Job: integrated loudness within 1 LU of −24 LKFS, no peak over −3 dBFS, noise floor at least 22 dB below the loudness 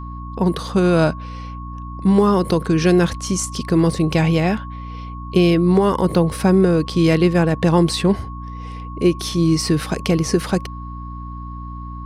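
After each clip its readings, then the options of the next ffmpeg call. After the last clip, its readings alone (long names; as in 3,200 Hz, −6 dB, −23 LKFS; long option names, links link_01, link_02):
mains hum 60 Hz; hum harmonics up to 300 Hz; level of the hum −29 dBFS; interfering tone 1,100 Hz; level of the tone −35 dBFS; integrated loudness −17.5 LKFS; sample peak −3.5 dBFS; target loudness −24.0 LKFS
→ -af "bandreject=frequency=60:width_type=h:width=6,bandreject=frequency=120:width_type=h:width=6,bandreject=frequency=180:width_type=h:width=6,bandreject=frequency=240:width_type=h:width=6,bandreject=frequency=300:width_type=h:width=6"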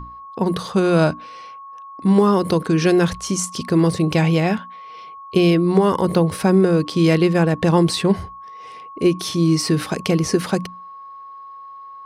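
mains hum none found; interfering tone 1,100 Hz; level of the tone −35 dBFS
→ -af "bandreject=frequency=1100:width=30"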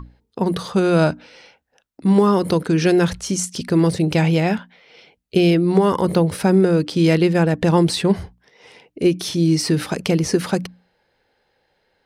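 interfering tone none found; integrated loudness −18.5 LKFS; sample peak −3.5 dBFS; target loudness −24.0 LKFS
→ -af "volume=-5.5dB"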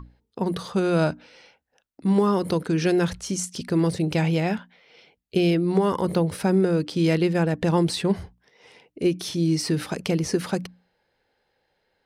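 integrated loudness −24.0 LKFS; sample peak −9.0 dBFS; background noise floor −73 dBFS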